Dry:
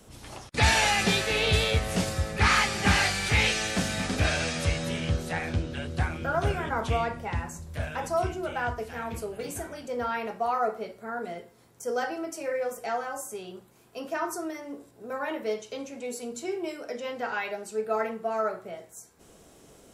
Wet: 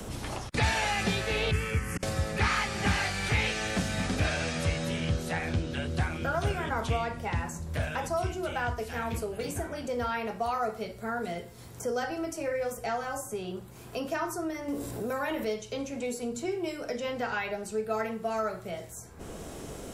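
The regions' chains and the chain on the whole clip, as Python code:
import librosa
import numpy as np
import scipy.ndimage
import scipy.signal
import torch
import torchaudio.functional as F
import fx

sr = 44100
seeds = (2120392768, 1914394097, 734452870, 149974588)

y = fx.chain(x, sr, fx.auto_swell(attack_ms=445.0),
    fx.fixed_phaser(hz=1600.0, stages=4), at=(1.51, 2.03))
y = fx.chain(y, sr, fx.high_shelf(hz=9600.0, db=7.0),
    fx.env_flatten(amount_pct=50), at=(14.68, 15.45))
y = fx.low_shelf(y, sr, hz=140.0, db=3.5)
y = fx.band_squash(y, sr, depth_pct=70)
y = F.gain(torch.from_numpy(y), -2.5).numpy()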